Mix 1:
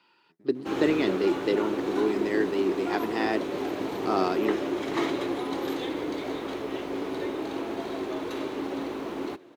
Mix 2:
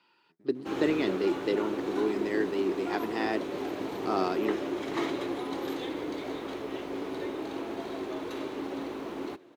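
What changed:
speech -3.0 dB; background -3.5 dB

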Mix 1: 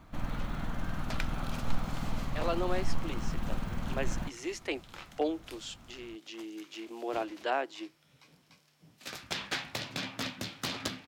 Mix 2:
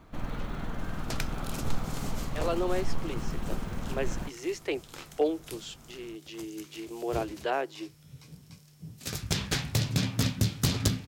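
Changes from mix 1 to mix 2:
second sound: remove three-band isolator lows -22 dB, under 290 Hz, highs -12 dB, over 4.1 kHz; master: add peaking EQ 420 Hz +7.5 dB 0.53 oct

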